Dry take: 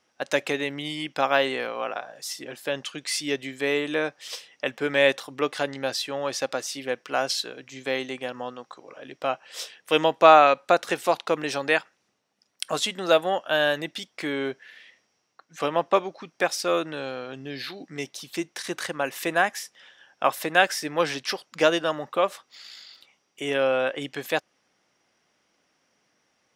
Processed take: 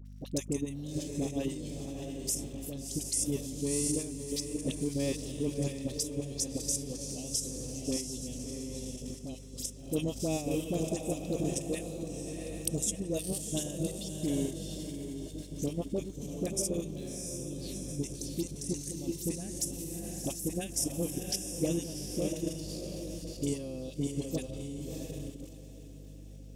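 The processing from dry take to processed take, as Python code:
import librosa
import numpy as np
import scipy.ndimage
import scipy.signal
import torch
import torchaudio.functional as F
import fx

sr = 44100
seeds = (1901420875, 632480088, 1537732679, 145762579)

p1 = scipy.signal.sosfilt(scipy.signal.cheby1(2, 1.0, [200.0, 6600.0], 'bandstop', fs=sr, output='sos'), x)
p2 = fx.transient(p1, sr, attack_db=6, sustain_db=-6)
p3 = fx.dmg_crackle(p2, sr, seeds[0], per_s=130.0, level_db=-54.0)
p4 = fx.env_phaser(p3, sr, low_hz=170.0, high_hz=4300.0, full_db=-34.0)
p5 = p4 + fx.echo_diffused(p4, sr, ms=675, feedback_pct=46, wet_db=-3, dry=0)
p6 = fx.add_hum(p5, sr, base_hz=50, snr_db=11)
p7 = fx.peak_eq(p6, sr, hz=1200.0, db=5.5, octaves=0.49)
p8 = fx.level_steps(p7, sr, step_db=9)
p9 = fx.dispersion(p8, sr, late='highs', ms=52.0, hz=820.0)
y = p9 * 10.0 ** (6.0 / 20.0)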